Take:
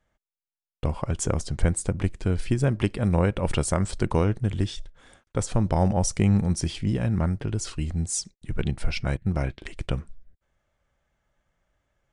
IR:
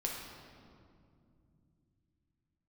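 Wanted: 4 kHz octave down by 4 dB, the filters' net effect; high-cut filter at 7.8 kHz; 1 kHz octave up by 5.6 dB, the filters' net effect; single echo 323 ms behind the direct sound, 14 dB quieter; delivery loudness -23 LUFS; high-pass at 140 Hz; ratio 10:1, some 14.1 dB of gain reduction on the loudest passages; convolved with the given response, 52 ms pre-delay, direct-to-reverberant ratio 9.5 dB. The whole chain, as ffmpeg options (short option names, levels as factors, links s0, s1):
-filter_complex "[0:a]highpass=140,lowpass=7800,equalizer=f=1000:t=o:g=7.5,equalizer=f=4000:t=o:g=-6,acompressor=threshold=0.0251:ratio=10,aecho=1:1:323:0.2,asplit=2[s0][s1];[1:a]atrim=start_sample=2205,adelay=52[s2];[s1][s2]afir=irnorm=-1:irlink=0,volume=0.251[s3];[s0][s3]amix=inputs=2:normalize=0,volume=5.62"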